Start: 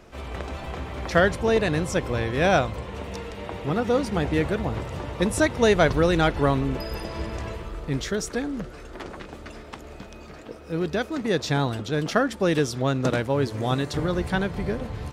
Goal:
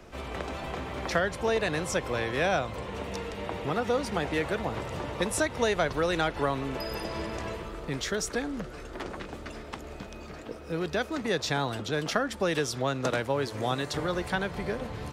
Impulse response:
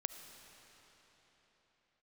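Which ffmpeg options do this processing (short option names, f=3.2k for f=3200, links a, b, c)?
-filter_complex "[0:a]acrossover=split=140|460[a][b][c];[a]acompressor=threshold=-42dB:ratio=4[d];[b]acompressor=threshold=-36dB:ratio=4[e];[c]acompressor=threshold=-25dB:ratio=4[f];[d][e][f]amix=inputs=3:normalize=0"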